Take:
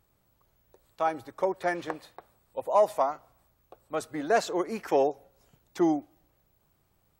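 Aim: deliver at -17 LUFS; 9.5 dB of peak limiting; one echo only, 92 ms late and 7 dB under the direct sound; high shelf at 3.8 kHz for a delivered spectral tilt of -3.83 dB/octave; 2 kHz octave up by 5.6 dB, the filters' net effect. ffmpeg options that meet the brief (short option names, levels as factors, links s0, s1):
-af "equalizer=f=2000:t=o:g=6,highshelf=f=3800:g=5,alimiter=limit=0.112:level=0:latency=1,aecho=1:1:92:0.447,volume=5.01"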